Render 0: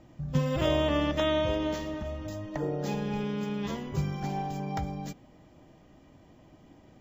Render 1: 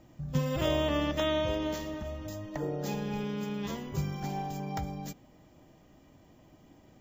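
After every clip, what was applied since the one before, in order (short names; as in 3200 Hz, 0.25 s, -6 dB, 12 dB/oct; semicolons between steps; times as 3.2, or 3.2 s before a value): high shelf 8300 Hz +11.5 dB; gain -2.5 dB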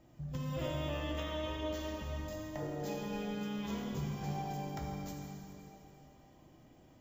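compressor, threshold -31 dBFS, peak gain reduction 7.5 dB; plate-style reverb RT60 3 s, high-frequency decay 0.95×, DRR -1.5 dB; gain -6.5 dB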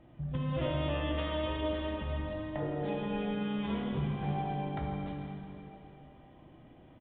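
air absorption 70 m; downsampling 8000 Hz; gain +5 dB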